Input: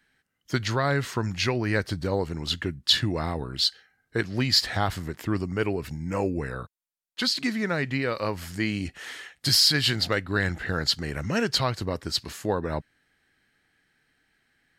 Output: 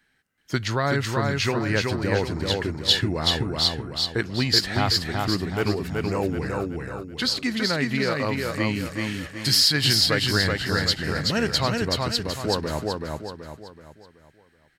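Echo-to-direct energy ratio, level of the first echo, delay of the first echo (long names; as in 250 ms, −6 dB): −2.0 dB, −3.0 dB, 378 ms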